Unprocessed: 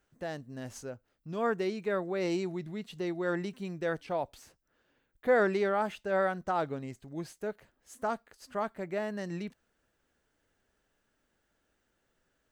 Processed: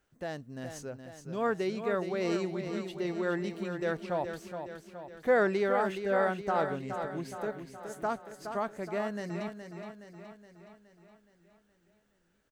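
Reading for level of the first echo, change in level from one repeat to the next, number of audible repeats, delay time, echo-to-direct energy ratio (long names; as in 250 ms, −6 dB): −8.0 dB, −5.0 dB, 6, 419 ms, −6.5 dB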